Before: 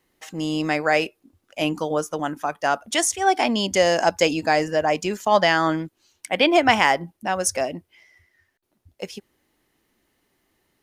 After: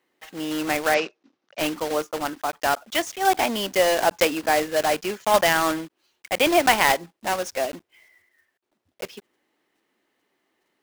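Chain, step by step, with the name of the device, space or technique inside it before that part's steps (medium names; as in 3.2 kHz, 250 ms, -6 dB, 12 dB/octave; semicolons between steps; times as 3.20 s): early digital voice recorder (band-pass 280–3600 Hz; block-companded coder 3-bit); 0.94–1.59 s: elliptic band-pass 150–5800 Hz, stop band 40 dB; trim -1 dB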